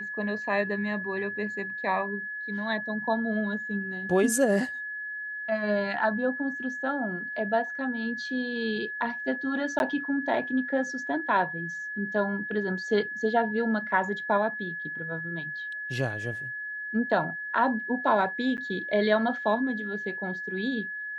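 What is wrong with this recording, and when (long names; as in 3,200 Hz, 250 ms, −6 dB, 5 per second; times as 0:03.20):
whistle 1,700 Hz −33 dBFS
0:09.79–0:09.80: drop-out 11 ms
0:18.57–0:18.58: drop-out 9.4 ms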